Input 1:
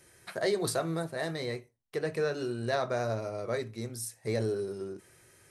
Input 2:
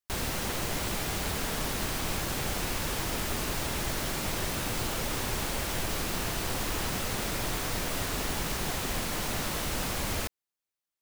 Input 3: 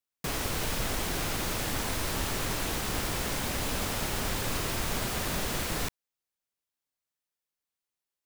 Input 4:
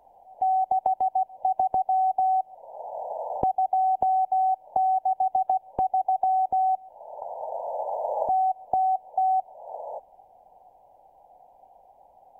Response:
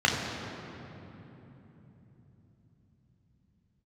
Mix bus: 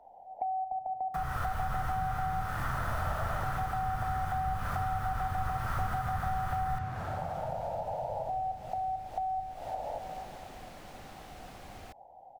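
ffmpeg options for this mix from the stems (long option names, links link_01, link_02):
-filter_complex "[1:a]adelay=1650,volume=-16dB[link_01];[2:a]firequalizer=gain_entry='entry(150,0);entry(260,-9);entry(1300,14);entry(2100,1);entry(3900,-5);entry(12000,5)':delay=0.05:min_phase=1,adelay=900,volume=-1.5dB,asplit=2[link_02][link_03];[link_03]volume=-17.5dB[link_04];[3:a]alimiter=limit=-17.5dB:level=0:latency=1:release=385,volume=-2dB,asplit=2[link_05][link_06];[link_06]volume=-19dB[link_07];[4:a]atrim=start_sample=2205[link_08];[link_04][link_07]amix=inputs=2:normalize=0[link_09];[link_09][link_08]afir=irnorm=-1:irlink=0[link_10];[link_01][link_02][link_05][link_10]amix=inputs=4:normalize=0,highshelf=frequency=5000:gain=-11,acrossover=split=140[link_11][link_12];[link_12]acompressor=threshold=-33dB:ratio=6[link_13];[link_11][link_13]amix=inputs=2:normalize=0"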